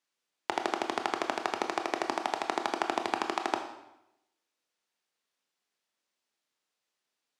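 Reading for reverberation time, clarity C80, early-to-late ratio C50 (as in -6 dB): 0.85 s, 10.0 dB, 8.0 dB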